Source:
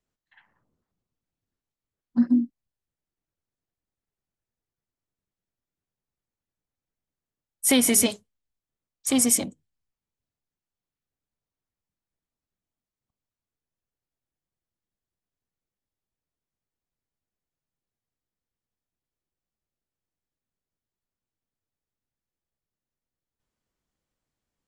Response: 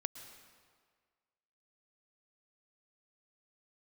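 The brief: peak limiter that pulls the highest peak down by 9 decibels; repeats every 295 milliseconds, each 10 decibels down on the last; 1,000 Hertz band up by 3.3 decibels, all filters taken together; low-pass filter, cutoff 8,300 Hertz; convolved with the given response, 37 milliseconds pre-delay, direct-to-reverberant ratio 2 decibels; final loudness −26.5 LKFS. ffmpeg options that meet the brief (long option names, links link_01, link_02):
-filter_complex "[0:a]lowpass=8300,equalizer=frequency=1000:width_type=o:gain=4.5,alimiter=limit=-18.5dB:level=0:latency=1,aecho=1:1:295|590|885|1180:0.316|0.101|0.0324|0.0104,asplit=2[link_01][link_02];[1:a]atrim=start_sample=2205,adelay=37[link_03];[link_02][link_03]afir=irnorm=-1:irlink=0,volume=-1dB[link_04];[link_01][link_04]amix=inputs=2:normalize=0,volume=0.5dB"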